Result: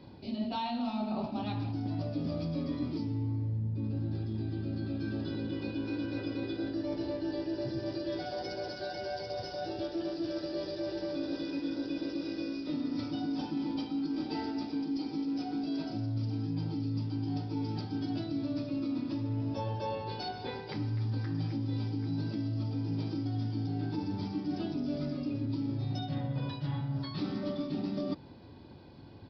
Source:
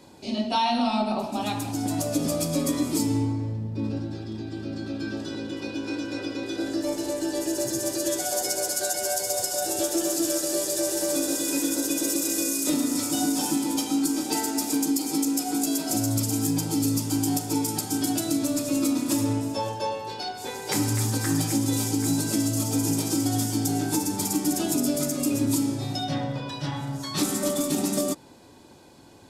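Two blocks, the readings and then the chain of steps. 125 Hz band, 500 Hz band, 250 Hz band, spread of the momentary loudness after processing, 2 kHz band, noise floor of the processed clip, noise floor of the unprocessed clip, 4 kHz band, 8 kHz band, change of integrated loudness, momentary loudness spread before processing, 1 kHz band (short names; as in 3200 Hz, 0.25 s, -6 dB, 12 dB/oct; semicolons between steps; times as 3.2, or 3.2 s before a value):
-3.0 dB, -9.0 dB, -8.0 dB, 3 LU, -11.0 dB, -44 dBFS, -38 dBFS, -13.0 dB, under -35 dB, -9.5 dB, 7 LU, -10.5 dB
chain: bell 88 Hz +12.5 dB 2.9 oct; reverse; compressor, threshold -25 dBFS, peak gain reduction 12.5 dB; reverse; downsampling 11025 Hz; gain -6 dB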